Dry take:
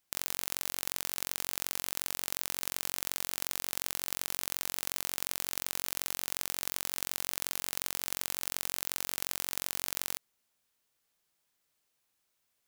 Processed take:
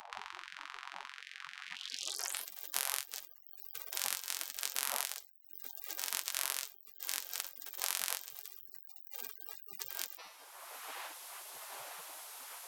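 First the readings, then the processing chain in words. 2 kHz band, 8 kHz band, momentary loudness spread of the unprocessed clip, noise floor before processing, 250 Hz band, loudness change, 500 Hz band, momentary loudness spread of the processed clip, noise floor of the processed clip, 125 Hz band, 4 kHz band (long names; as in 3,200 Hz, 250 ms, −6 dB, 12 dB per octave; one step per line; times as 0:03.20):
−3.0 dB, −4.0 dB, 0 LU, −79 dBFS, −17.0 dB, −6.0 dB, −7.0 dB, 13 LU, −57 dBFS, below −20 dB, −3.5 dB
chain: wind on the microphone 150 Hz −34 dBFS
hum removal 199 Hz, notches 30
low-pass filter sweep 510 Hz → 12,000 Hz, 0:01.78–0:02.49
brickwall limiter −12 dBFS, peak gain reduction 8 dB
high-shelf EQ 4,500 Hz −6.5 dB
echo ahead of the sound 294 ms −16 dB
gate on every frequency bin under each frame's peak −30 dB weak
flanger 0.52 Hz, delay 4.5 ms, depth 2.9 ms, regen −58%
multiband upward and downward compressor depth 70%
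level +16 dB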